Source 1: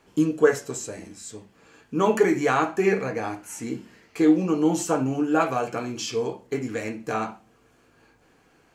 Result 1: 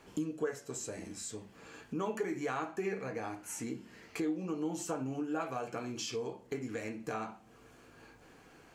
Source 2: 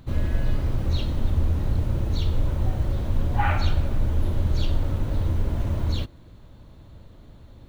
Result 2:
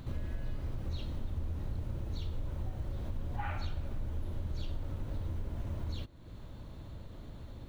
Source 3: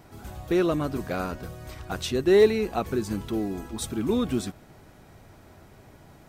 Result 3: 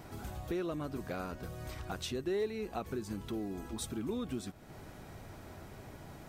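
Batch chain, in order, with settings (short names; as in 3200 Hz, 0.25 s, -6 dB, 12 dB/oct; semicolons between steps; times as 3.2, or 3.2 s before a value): compressor 2.5:1, threshold -43 dBFS; gain +1.5 dB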